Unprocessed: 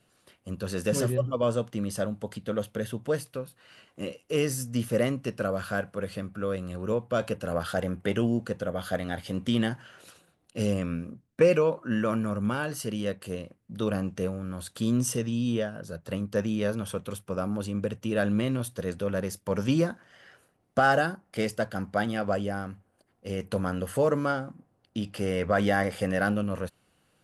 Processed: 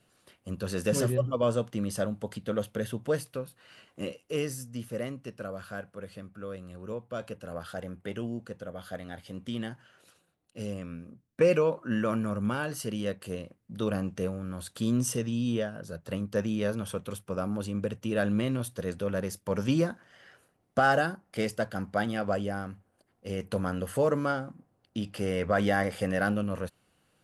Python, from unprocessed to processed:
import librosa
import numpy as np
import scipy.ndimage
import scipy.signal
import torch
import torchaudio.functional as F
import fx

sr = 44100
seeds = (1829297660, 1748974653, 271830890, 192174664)

y = fx.gain(x, sr, db=fx.line((4.07, -0.5), (4.74, -9.0), (11.0, -9.0), (11.5, -1.5)))